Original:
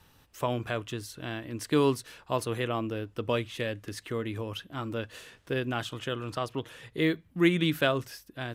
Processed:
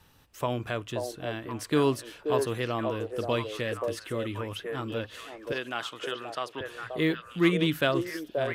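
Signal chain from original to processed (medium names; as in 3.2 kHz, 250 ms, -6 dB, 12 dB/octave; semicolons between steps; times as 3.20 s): 5.52–6.61 s: frequency weighting A; repeats whose band climbs or falls 530 ms, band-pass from 540 Hz, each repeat 1.4 oct, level -1 dB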